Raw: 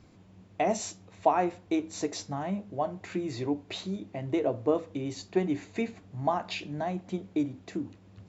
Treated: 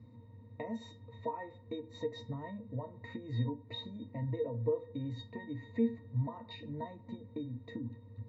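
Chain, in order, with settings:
downward compressor 4 to 1, threshold −34 dBFS, peak gain reduction 13.5 dB
resonances in every octave A#, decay 0.14 s
level +11 dB

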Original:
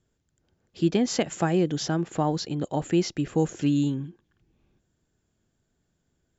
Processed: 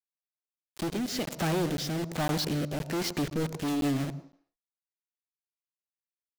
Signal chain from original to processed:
Chebyshev low-pass filter 4,100 Hz, order 2
downward compressor 4 to 1, threshold −25 dBFS, peak gain reduction 7 dB
log-companded quantiser 2 bits
rotating-speaker cabinet horn 1.2 Hz, later 8 Hz, at 0:03.08
on a send at −15.5 dB: convolution reverb RT60 0.55 s, pre-delay 98 ms
on the sum: regular buffer underruns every 0.51 s, samples 512, zero, from 0:00.75
level −1 dB

